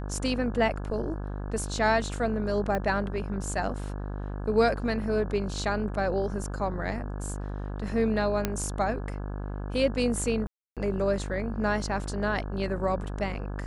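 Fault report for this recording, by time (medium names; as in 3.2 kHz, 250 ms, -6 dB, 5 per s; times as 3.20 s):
buzz 50 Hz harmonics 34 -34 dBFS
2.75 s: pop -17 dBFS
8.45 s: pop -11 dBFS
10.47–10.77 s: dropout 297 ms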